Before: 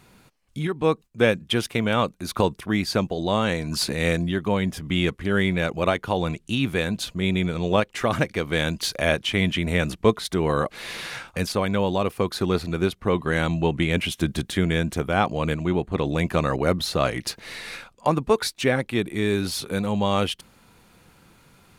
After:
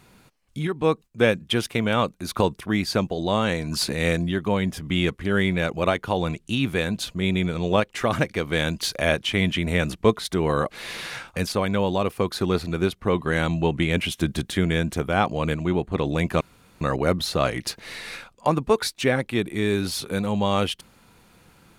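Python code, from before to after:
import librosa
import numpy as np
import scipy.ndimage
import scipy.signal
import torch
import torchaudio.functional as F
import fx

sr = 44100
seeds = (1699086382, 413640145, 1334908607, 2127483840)

y = fx.edit(x, sr, fx.insert_room_tone(at_s=16.41, length_s=0.4), tone=tone)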